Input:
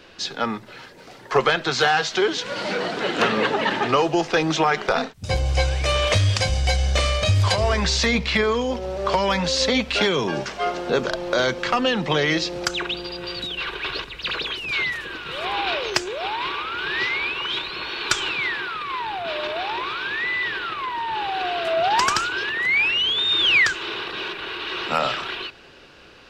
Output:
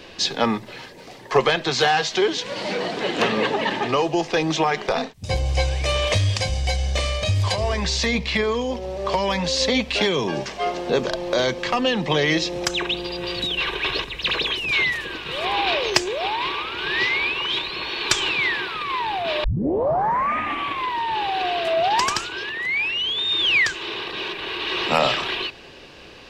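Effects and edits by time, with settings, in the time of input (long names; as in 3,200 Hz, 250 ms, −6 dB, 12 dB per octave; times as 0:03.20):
0:12.35–0:14.90: notch filter 4,600 Hz, Q 11
0:19.44: tape start 1.44 s
whole clip: parametric band 1,400 Hz −11 dB 0.24 octaves; speech leveller 2 s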